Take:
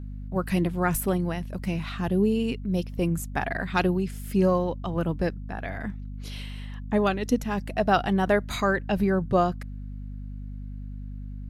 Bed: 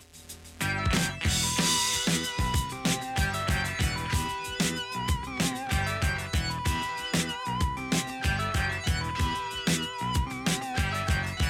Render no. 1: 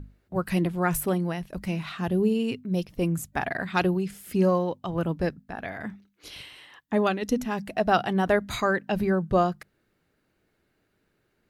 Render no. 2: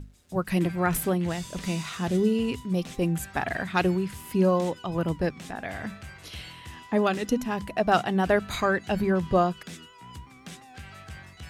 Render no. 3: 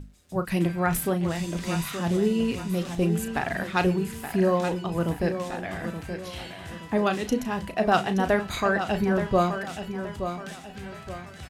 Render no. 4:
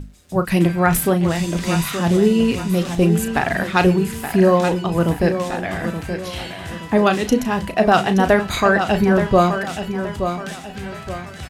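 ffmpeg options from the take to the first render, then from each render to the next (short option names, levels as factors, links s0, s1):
-af "bandreject=f=50:t=h:w=6,bandreject=f=100:t=h:w=6,bandreject=f=150:t=h:w=6,bandreject=f=200:t=h:w=6,bandreject=f=250:t=h:w=6"
-filter_complex "[1:a]volume=0.168[s0];[0:a][s0]amix=inputs=2:normalize=0"
-filter_complex "[0:a]asplit=2[s0][s1];[s1]adelay=35,volume=0.299[s2];[s0][s2]amix=inputs=2:normalize=0,aecho=1:1:874|1748|2622|3496:0.355|0.138|0.054|0.021"
-af "volume=2.66,alimiter=limit=0.708:level=0:latency=1"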